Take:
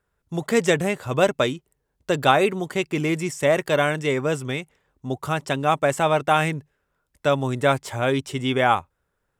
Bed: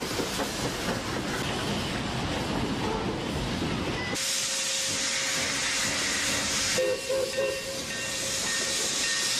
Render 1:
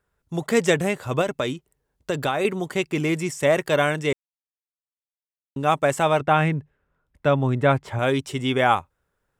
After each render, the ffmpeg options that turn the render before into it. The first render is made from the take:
-filter_complex "[0:a]asettb=1/sr,asplit=3[a][b][c];[a]atrim=end=1.214[d];[b]atrim=start=1.21:end=2.45,asetpts=PTS-STARTPTS,afade=t=in:d=0.004:c=qsin,afade=t=out:st=1.236:d=0.004:c=qsin,acompressor=threshold=-20dB:ratio=4:attack=3.2:release=140:knee=1:detection=peak[e];[c]atrim=start=2.446[f];[d][e]acrossfade=d=0.004:c1=hsin:c2=qsin[g];[g][f]acrossfade=d=0.004:c1=qsin:c2=hsin,asettb=1/sr,asplit=3[h][i][j];[h]atrim=end=6.204[k];[i]atrim=start=6.2:end=7.99,asetpts=PTS-STARTPTS,afade=t=in:d=0.004:c=qsin,afade=t=out:st=1.786:d=0.004:c=qsin,bass=f=250:g=5,treble=f=4k:g=-14[l];[j]atrim=start=7.986[m];[k][l]acrossfade=d=0.004:c1=hsin:c2=qsin[n];[n][m]acrossfade=d=0.004:c1=qsin:c2=hsin,asplit=3[o][p][q];[o]atrim=end=4.13,asetpts=PTS-STARTPTS,afade=t=out:st=4.126:d=0.004:c=hsin[r];[p]atrim=start=4.13:end=5.56,asetpts=PTS-STARTPTS,volume=0[s];[q]atrim=start=5.56,asetpts=PTS-STARTPTS,afade=t=in:d=0.004:c=hsin[t];[r][s][t]concat=n=3:v=0:a=1"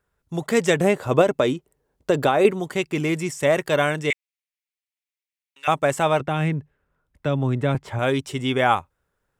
-filter_complex "[0:a]asettb=1/sr,asplit=3[a][b][c];[a]atrim=end=0.794[d];[b]atrim=start=0.79:end=2.51,asetpts=PTS-STARTPTS,afade=t=in:d=0.004:c=qsin,afade=t=out:st=1.716:d=0.004:c=qsin,equalizer=f=450:t=o:w=2.6:g=7[e];[c]atrim=start=2.506[f];[d][e]acrossfade=d=0.004:c1=hsin:c2=qsin[g];[g][f]acrossfade=d=0.004:c1=qsin:c2=hsin,asettb=1/sr,asplit=3[h][i][j];[h]atrim=end=4.104[k];[i]atrim=start=4.1:end=5.68,asetpts=PTS-STARTPTS,afade=t=in:d=0.004:c=qsin,afade=t=out:st=1.576:d=0.004:c=qsin,highpass=f=2.2k:t=q:w=3.1[l];[j]atrim=start=5.676[m];[k][l]acrossfade=d=0.004:c1=hsin:c2=qsin[n];[n][m]acrossfade=d=0.004:c1=qsin:c2=hsin,asettb=1/sr,asplit=3[o][p][q];[o]atrim=end=6.204[r];[p]atrim=start=6.2:end=7.75,asetpts=PTS-STARTPTS,afade=t=in:d=0.004:c=qsin,afade=t=out:st=1.546:d=0.004:c=qsin,acrossover=split=420|3000[s][t][u];[t]acompressor=threshold=-29dB:ratio=2.5:attack=3.2:release=140:knee=2.83:detection=peak[v];[s][v][u]amix=inputs=3:normalize=0[w];[q]atrim=start=7.746[x];[r][w]acrossfade=d=0.004:c1=hsin:c2=qsin[y];[y][x]acrossfade=d=0.004:c1=qsin:c2=hsin"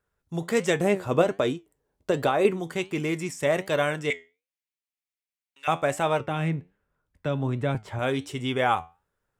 -af "flanger=delay=8.5:depth=3.6:regen=77:speed=1.3:shape=sinusoidal"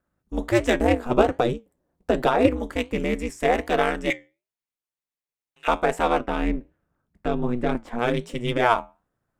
-filter_complex "[0:a]aeval=exprs='val(0)*sin(2*PI*120*n/s)':c=same,asplit=2[a][b];[b]adynamicsmooth=sensitivity=5.5:basefreq=1.9k,volume=0dB[c];[a][c]amix=inputs=2:normalize=0"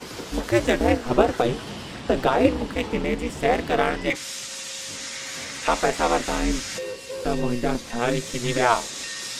-filter_complex "[1:a]volume=-5.5dB[a];[0:a][a]amix=inputs=2:normalize=0"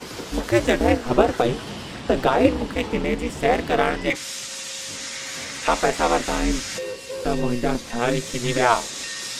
-af "volume=1.5dB,alimiter=limit=-2dB:level=0:latency=1"

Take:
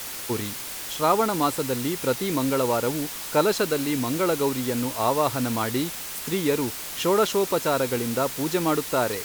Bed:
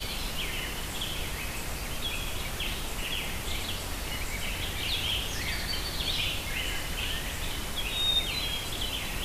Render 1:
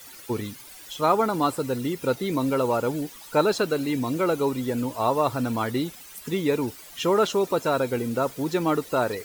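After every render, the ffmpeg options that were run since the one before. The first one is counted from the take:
-af "afftdn=nr=14:nf=-35"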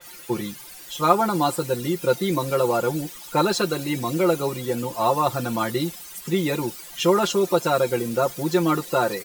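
-af "aecho=1:1:5.7:0.86,adynamicequalizer=threshold=0.0141:dfrequency=3500:dqfactor=0.7:tfrequency=3500:tqfactor=0.7:attack=5:release=100:ratio=0.375:range=2:mode=boostabove:tftype=highshelf"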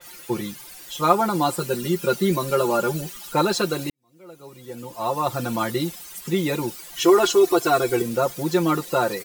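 -filter_complex "[0:a]asettb=1/sr,asplit=3[a][b][c];[a]atrim=end=1.584[d];[b]atrim=start=1.58:end=3.33,asetpts=PTS-STARTPTS,afade=t=in:d=0.004:c=qsin,afade=t=out:st=1.746:d=0.004:c=qsin,aecho=1:1:5:0.65,atrim=end_sample=77175[e];[c]atrim=start=3.326[f];[d][e]acrossfade=d=0.004:c1=hsin:c2=qsin[g];[g][f]acrossfade=d=0.004:c1=qsin:c2=hsin,asettb=1/sr,asplit=3[h][i][j];[h]atrim=end=6.964[k];[i]atrim=start=6.96:end=8.02,asetpts=PTS-STARTPTS,afade=t=in:d=0.004:c=qsin,afade=t=out:st=1.056:d=0.004:c=qsin,aecho=1:1:2.7:0.95,atrim=end_sample=46746[l];[j]atrim=start=8.016[m];[k][l]acrossfade=d=0.004:c1=hsin:c2=qsin[n];[n][m]acrossfade=d=0.004:c1=qsin:c2=hsin,asplit=2[o][p];[o]atrim=end=3.9,asetpts=PTS-STARTPTS,afade=t=out:st=3.896:d=0.004:c=hsin[q];[p]atrim=start=3.9,asetpts=PTS-STARTPTS,afade=t=in:d=1.53:c=qua[r];[q][r]concat=n=2:v=0:a=1"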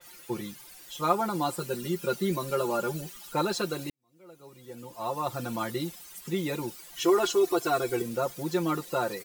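-af "volume=-7.5dB"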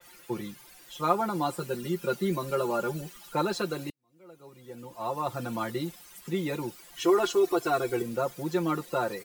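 -filter_complex "[0:a]acrossover=split=250|1800|2900[a][b][c][d];[c]acrusher=bits=4:mode=log:mix=0:aa=0.000001[e];[d]flanger=delay=3.3:depth=6.1:regen=53:speed=0.22:shape=triangular[f];[a][b][e][f]amix=inputs=4:normalize=0"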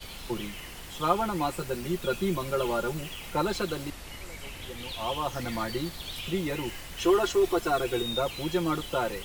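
-filter_complex "[1:a]volume=-8.5dB[a];[0:a][a]amix=inputs=2:normalize=0"

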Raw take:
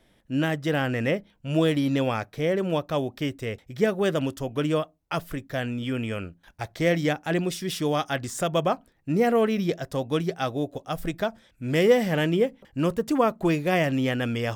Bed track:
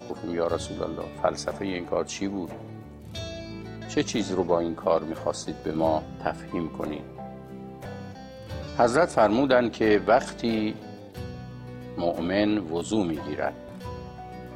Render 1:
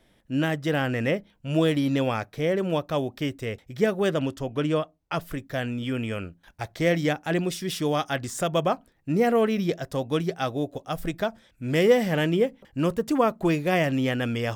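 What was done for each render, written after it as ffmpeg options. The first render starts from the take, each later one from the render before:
-filter_complex "[0:a]asettb=1/sr,asplit=3[a][b][c];[a]atrim=end=4.104[d];[b]atrim=start=4.1:end=5.21,asetpts=PTS-STARTPTS,afade=t=in:d=0.004:c=qsin,afade=t=out:st=1.106:d=0.004:c=qsin,highshelf=f=9.9k:g=-11.5[e];[c]atrim=start=5.206[f];[d][e]acrossfade=d=0.004:c1=hsin:c2=qsin[g];[g][f]acrossfade=d=0.004:c1=qsin:c2=hsin"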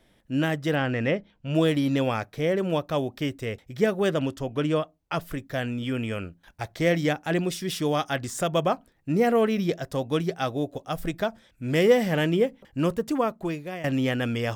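-filter_complex "[0:a]asettb=1/sr,asplit=3[a][b][c];[a]atrim=end=0.754[d];[b]atrim=start=0.75:end=1.55,asetpts=PTS-STARTPTS,afade=t=in:d=0.004:c=qsin,afade=t=out:st=0.796:d=0.004:c=qsin,lowpass=5k[e];[c]atrim=start=1.546[f];[d][e]acrossfade=d=0.004:c1=hsin:c2=qsin[g];[g][f]acrossfade=d=0.004:c1=qsin:c2=hsin,asplit=2[h][i];[h]atrim=end=13.84,asetpts=PTS-STARTPTS,afade=t=out:st=12.86:d=0.98:silence=0.158489[j];[i]atrim=start=13.84,asetpts=PTS-STARTPTS,afade=t=in:d=0.004:c=hsin:silence=0.158489[k];[j][k]concat=n=2:v=0:a=1"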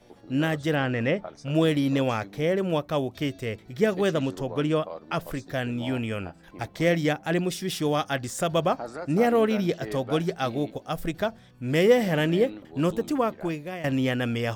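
-filter_complex "[1:a]volume=-15.5dB[a];[0:a][a]amix=inputs=2:normalize=0"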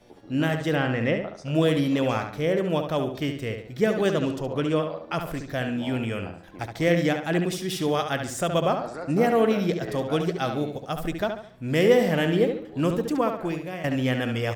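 -filter_complex "[0:a]asplit=2[a][b];[b]adelay=70,lowpass=f=4.3k:p=1,volume=-6.5dB,asplit=2[c][d];[d]adelay=70,lowpass=f=4.3k:p=1,volume=0.4,asplit=2[e][f];[f]adelay=70,lowpass=f=4.3k:p=1,volume=0.4,asplit=2[g][h];[h]adelay=70,lowpass=f=4.3k:p=1,volume=0.4,asplit=2[i][j];[j]adelay=70,lowpass=f=4.3k:p=1,volume=0.4[k];[a][c][e][g][i][k]amix=inputs=6:normalize=0"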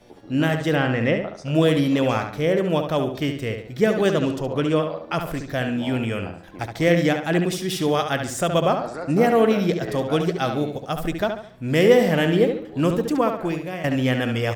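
-af "volume=3.5dB"

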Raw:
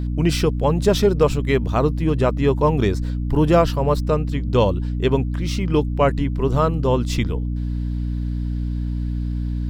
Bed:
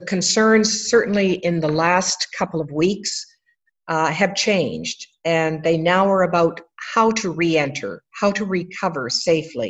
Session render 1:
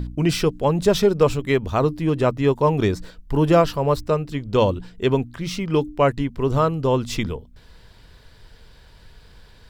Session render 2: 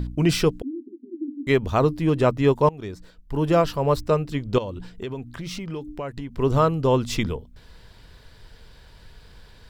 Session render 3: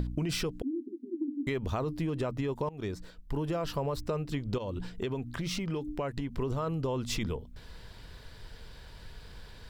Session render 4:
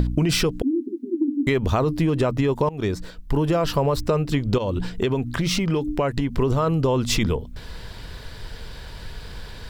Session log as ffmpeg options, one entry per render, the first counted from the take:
-af "bandreject=f=60:t=h:w=4,bandreject=f=120:t=h:w=4,bandreject=f=180:t=h:w=4,bandreject=f=240:t=h:w=4,bandreject=f=300:t=h:w=4"
-filter_complex "[0:a]asettb=1/sr,asplit=3[a][b][c];[a]atrim=end=0.624[d];[b]atrim=start=0.62:end=1.47,asetpts=PTS-STARTPTS,afade=t=in:d=0.004:c=qsin,afade=t=out:st=0.846:d=0.004:c=qsin,asuperpass=centerf=290:order=12:qfactor=2.9[e];[c]atrim=start=1.466[f];[d][e]acrossfade=d=0.004:c1=hsin:c2=qsin[g];[g][f]acrossfade=d=0.004:c1=qsin:c2=hsin,asettb=1/sr,asplit=3[h][i][j];[h]atrim=end=4.584[k];[i]atrim=start=4.58:end=6.34,asetpts=PTS-STARTPTS,afade=t=in:d=0.004:c=qsin,afade=t=out:st=1.756:d=0.004:c=qsin,acompressor=threshold=-29dB:ratio=5:attack=3.2:release=140:knee=1:detection=peak[l];[j]atrim=start=6.336[m];[k][l]acrossfade=d=0.004:c1=hsin:c2=qsin[n];[n][m]acrossfade=d=0.004:c1=qsin:c2=hsin,asplit=2[o][p];[o]atrim=end=2.69,asetpts=PTS-STARTPTS,afade=t=out:st=2.686:d=0.004:c=hsin:silence=0.0891251[q];[p]atrim=start=2.69,asetpts=PTS-STARTPTS,afade=t=in:d=1.37:silence=0.0891251[r];[q][r]concat=n=2:v=0:a=1"
-af "alimiter=limit=-15dB:level=0:latency=1:release=26,acompressor=threshold=-29dB:ratio=6"
-af "volume=11.5dB"

